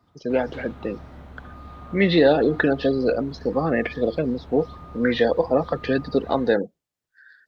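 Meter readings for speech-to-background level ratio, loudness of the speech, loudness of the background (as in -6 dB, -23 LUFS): 20.0 dB, -22.5 LUFS, -42.5 LUFS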